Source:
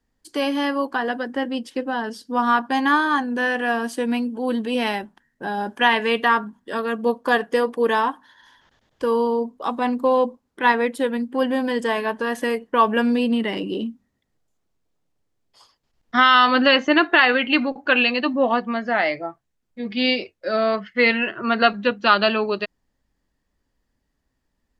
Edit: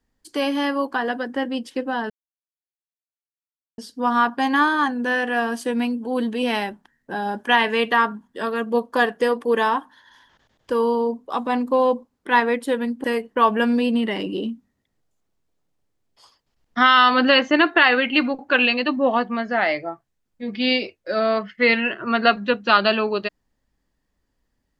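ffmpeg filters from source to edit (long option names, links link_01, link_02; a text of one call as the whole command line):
ffmpeg -i in.wav -filter_complex "[0:a]asplit=3[link_01][link_02][link_03];[link_01]atrim=end=2.1,asetpts=PTS-STARTPTS,afade=type=out:start_time=2.096:duration=0.004:curve=hsin,apad=pad_dur=1.68[link_04];[link_02]atrim=start=2.1:end=11.362,asetpts=PTS-STARTPTS,afade=type=in:duration=0.004:curve=hsin[link_05];[link_03]atrim=start=12.408[link_06];[link_04][link_05]concat=n=2:v=0:a=1[link_07];[link_07][link_06]acrossfade=duration=0.004:curve1=hsin:curve2=hsin" out.wav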